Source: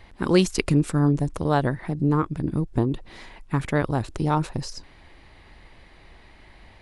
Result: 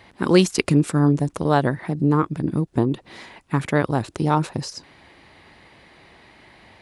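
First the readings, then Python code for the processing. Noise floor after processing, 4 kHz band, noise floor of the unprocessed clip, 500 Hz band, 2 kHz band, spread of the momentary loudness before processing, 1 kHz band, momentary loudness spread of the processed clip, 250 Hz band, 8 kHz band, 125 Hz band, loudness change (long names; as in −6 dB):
−56 dBFS, +3.5 dB, −51 dBFS, +3.5 dB, +3.5 dB, 10 LU, +3.5 dB, 10 LU, +3.0 dB, +3.5 dB, +2.0 dB, +3.0 dB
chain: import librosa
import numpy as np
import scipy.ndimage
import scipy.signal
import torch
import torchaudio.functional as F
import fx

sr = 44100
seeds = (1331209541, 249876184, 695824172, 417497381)

y = scipy.signal.sosfilt(scipy.signal.butter(2, 120.0, 'highpass', fs=sr, output='sos'), x)
y = F.gain(torch.from_numpy(y), 3.5).numpy()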